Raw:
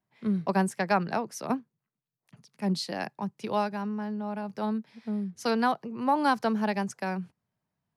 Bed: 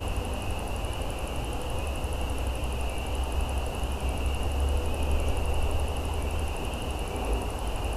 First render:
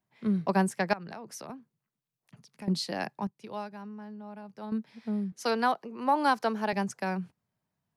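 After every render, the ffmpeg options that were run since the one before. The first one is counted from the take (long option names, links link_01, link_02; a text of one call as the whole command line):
ffmpeg -i in.wav -filter_complex "[0:a]asettb=1/sr,asplit=3[link_01][link_02][link_03];[link_01]atrim=end=0.934[link_04];[link_02]atrim=start=0.93:end=2.68,asetpts=PTS-STARTPTS,afade=type=in:duration=0.004:curve=qsin,afade=type=out:start_time=1.746:duration=0.004:curve=qsin,acompressor=threshold=-38dB:ratio=8:attack=3.2:release=140:knee=1:detection=peak[link_05];[link_03]atrim=start=2.676[link_06];[link_04][link_05]acrossfade=duration=0.004:curve1=hsin:curve2=qsin[link_07];[link_07][link_06]acrossfade=duration=0.004:curve1=qsin:curve2=hsin,asettb=1/sr,asplit=3[link_08][link_09][link_10];[link_08]atrim=end=5.324[link_11];[link_09]atrim=start=5.32:end=6.73,asetpts=PTS-STARTPTS,afade=type=in:duration=0.004:curve=qsin,afade=type=out:start_time=1.406:duration=0.004:curve=qsin,highpass=290[link_12];[link_10]atrim=start=6.726[link_13];[link_11][link_12]acrossfade=duration=0.004:curve1=hsin:curve2=qsin[link_14];[link_14][link_13]acrossfade=duration=0.004:curve1=qsin:curve2=hsin,asplit=3[link_15][link_16][link_17];[link_15]atrim=end=3.272[link_18];[link_16]atrim=start=3.268:end=4.722,asetpts=PTS-STARTPTS,volume=-10dB[link_19];[link_17]atrim=start=4.718[link_20];[link_18][link_19]acrossfade=duration=0.004:curve1=hsin:curve2=hsin[link_21];[link_21][link_20]acrossfade=duration=0.004:curve1=hsin:curve2=hsin" out.wav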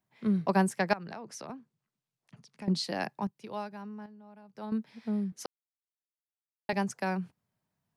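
ffmpeg -i in.wav -filter_complex "[0:a]asettb=1/sr,asplit=3[link_01][link_02][link_03];[link_01]atrim=end=1.114[link_04];[link_02]atrim=start=1.11:end=2.84,asetpts=PTS-STARTPTS,afade=type=in:duration=0.004:curve=qsin,afade=type=out:start_time=1.726:duration=0.004:curve=qsin,lowpass=8400[link_05];[link_03]atrim=start=2.836[link_06];[link_04][link_05]acrossfade=duration=0.004:curve1=hsin:curve2=qsin[link_07];[link_07][link_06]acrossfade=duration=0.004:curve1=qsin:curve2=hsin,asplit=5[link_08][link_09][link_10][link_11][link_12];[link_08]atrim=end=4.062[link_13];[link_09]atrim=start=4.058:end=4.552,asetpts=PTS-STARTPTS,volume=-9dB[link_14];[link_10]atrim=start=4.548:end=5.46,asetpts=PTS-STARTPTS,afade=type=out:start_time=0.908:duration=0.004:curve=hsin[link_15];[link_11]atrim=start=5.46:end=6.69,asetpts=PTS-STARTPTS,volume=0[link_16];[link_12]atrim=start=6.69,asetpts=PTS-STARTPTS,afade=type=in:duration=0.004:curve=hsin[link_17];[link_13][link_14]acrossfade=duration=0.004:curve1=hsin:curve2=hsin[link_18];[link_15][link_16][link_17]concat=n=3:v=0:a=1[link_19];[link_18][link_19]acrossfade=duration=0.004:curve1=hsin:curve2=hsin" out.wav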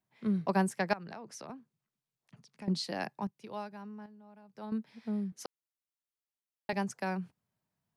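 ffmpeg -i in.wav -af "volume=-3dB" out.wav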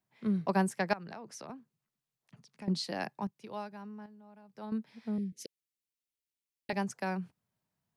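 ffmpeg -i in.wav -filter_complex "[0:a]asettb=1/sr,asplit=3[link_01][link_02][link_03];[link_01]atrim=end=5.184[link_04];[link_02]atrim=start=5.18:end=6.7,asetpts=PTS-STARTPTS,afade=type=in:duration=0.004:curve=qsin,afade=type=out:start_time=1.516:duration=0.004:curve=qsin,asuperstop=centerf=1000:order=8:qfactor=0.7[link_05];[link_03]atrim=start=6.696[link_06];[link_04][link_05]acrossfade=duration=0.004:curve1=hsin:curve2=qsin[link_07];[link_07][link_06]acrossfade=duration=0.004:curve1=qsin:curve2=hsin" out.wav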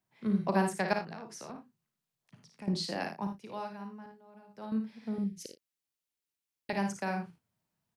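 ffmpeg -i in.wav -filter_complex "[0:a]asplit=2[link_01][link_02];[link_02]adelay=36,volume=-12dB[link_03];[link_01][link_03]amix=inputs=2:normalize=0,aecho=1:1:55|79:0.473|0.266" out.wav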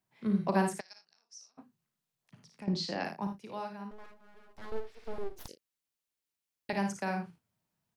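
ffmpeg -i in.wav -filter_complex "[0:a]asplit=3[link_01][link_02][link_03];[link_01]afade=type=out:start_time=0.79:duration=0.02[link_04];[link_02]bandpass=frequency=5600:width_type=q:width=6.2,afade=type=in:start_time=0.79:duration=0.02,afade=type=out:start_time=1.57:duration=0.02[link_05];[link_03]afade=type=in:start_time=1.57:duration=0.02[link_06];[link_04][link_05][link_06]amix=inputs=3:normalize=0,asettb=1/sr,asplit=3[link_07][link_08][link_09];[link_07]atrim=end=2.644[link_10];[link_08]atrim=start=2.64:end=3.05,asetpts=PTS-STARTPTS,afade=type=in:duration=0.004:curve=qsin,afade=type=out:start_time=0.406:duration=0.004:curve=qsin,lowpass=frequency=6500:width=0.5412,lowpass=frequency=6500:width=1.3066[link_11];[link_09]atrim=start=3.046[link_12];[link_10][link_11]acrossfade=duration=0.004:curve1=hsin:curve2=qsin[link_13];[link_13][link_12]acrossfade=duration=0.004:curve1=qsin:curve2=hsin,asettb=1/sr,asplit=3[link_14][link_15][link_16];[link_14]atrim=end=3.914[link_17];[link_15]atrim=start=3.91:end=5.48,asetpts=PTS-STARTPTS,afade=type=in:duration=0.004:curve=qsin,afade=type=out:start_time=1.566:duration=0.004:curve=qsin,aeval=exprs='abs(val(0))':channel_layout=same[link_18];[link_16]atrim=start=5.476[link_19];[link_17][link_18]acrossfade=duration=0.004:curve1=hsin:curve2=qsin[link_20];[link_20][link_19]acrossfade=duration=0.004:curve1=qsin:curve2=hsin" out.wav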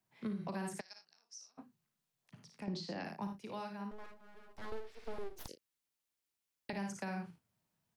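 ffmpeg -i in.wav -filter_complex "[0:a]alimiter=level_in=3dB:limit=-24dB:level=0:latency=1:release=160,volume=-3dB,acrossover=split=290|1400[link_01][link_02][link_03];[link_01]acompressor=threshold=-40dB:ratio=4[link_04];[link_02]acompressor=threshold=-44dB:ratio=4[link_05];[link_03]acompressor=threshold=-47dB:ratio=4[link_06];[link_04][link_05][link_06]amix=inputs=3:normalize=0" out.wav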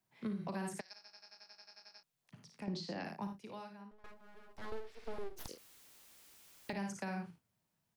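ffmpeg -i in.wav -filter_complex "[0:a]asettb=1/sr,asplit=3[link_01][link_02][link_03];[link_01]atrim=end=5.204[link_04];[link_02]atrim=start=5.2:end=6.73,asetpts=PTS-STARTPTS,afade=type=in:duration=0.004:curve=qsin,afade=type=out:start_time=1.526:duration=0.004:curve=qsin,aeval=exprs='val(0)+0.5*0.00188*sgn(val(0))':channel_layout=same[link_05];[link_03]atrim=start=6.726[link_06];[link_04][link_05]acrossfade=duration=0.004:curve1=hsin:curve2=qsin[link_07];[link_07][link_06]acrossfade=duration=0.004:curve1=qsin:curve2=hsin,asplit=14[link_08][link_09][link_10][link_11][link_12][link_13][link_14][link_15][link_16][link_17][link_18][link_19][link_20][link_21];[link_08]atrim=end=1.042[link_22];[link_09]atrim=start=0.948:end=1.042[link_23];[link_10]atrim=start=0.948:end=1.042[link_24];[link_11]atrim=start=0.948:end=1.042[link_25];[link_12]atrim=start=0.948:end=1.042[link_26];[link_13]atrim=start=0.948:end=1.042[link_27];[link_14]atrim=start=0.948:end=1.042[link_28];[link_15]atrim=start=0.948:end=1.042[link_29];[link_16]atrim=start=0.948:end=1.042[link_30];[link_17]atrim=start=0.948:end=1.042[link_31];[link_18]atrim=start=0.948:end=1.042[link_32];[link_19]atrim=start=0.948:end=1.042[link_33];[link_20]atrim=start=2.028:end=4.04,asetpts=PTS-STARTPTS,afade=type=out:start_time=1.132:duration=0.88:silence=0.125893[link_34];[link_21]atrim=start=4.04,asetpts=PTS-STARTPTS,afade=type=in:duration=0.004:curve=hsin:silence=0.125893[link_35];[link_22][link_23]acrossfade=duration=0.004:curve1=hsin:curve2=hsin[link_36];[link_36][link_24]acrossfade=duration=0.004:curve1=hsin:curve2=hsin[link_37];[link_37][link_25]acrossfade=duration=0.004:curve1=hsin:curve2=hsin[link_38];[link_38][link_26]acrossfade=duration=0.004:curve1=hsin:curve2=hsin[link_39];[link_39][link_27]acrossfade=duration=0.004:curve1=hsin:curve2=hsin[link_40];[link_40][link_28]acrossfade=duration=0.004:curve1=hsin:curve2=hsin[link_41];[link_41][link_29]acrossfade=duration=0.004:curve1=hsin:curve2=hsin[link_42];[link_42][link_30]acrossfade=duration=0.004:curve1=hsin:curve2=hsin[link_43];[link_43][link_31]acrossfade=duration=0.004:curve1=hsin:curve2=hsin[link_44];[link_44][link_32]acrossfade=duration=0.004:curve1=hsin:curve2=hsin[link_45];[link_45][link_33]acrossfade=duration=0.004:curve1=hsin:curve2=hsin[link_46];[link_34][link_35]concat=n=2:v=0:a=1[link_47];[link_46][link_47]acrossfade=duration=0.004:curve1=hsin:curve2=hsin" out.wav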